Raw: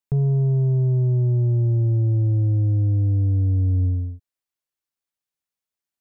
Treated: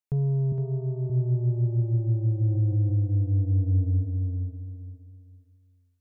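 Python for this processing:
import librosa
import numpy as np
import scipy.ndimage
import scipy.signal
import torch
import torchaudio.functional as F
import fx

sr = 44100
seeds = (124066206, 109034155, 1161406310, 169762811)

y = fx.echo_feedback(x, sr, ms=463, feedback_pct=27, wet_db=-5)
y = fx.rider(y, sr, range_db=4, speed_s=2.0)
y = fx.highpass(y, sr, hz=160.0, slope=12, at=(0.52, 1.1))
y = fx.env_flatten(y, sr, amount_pct=50, at=(2.41, 2.95))
y = y * librosa.db_to_amplitude(-6.0)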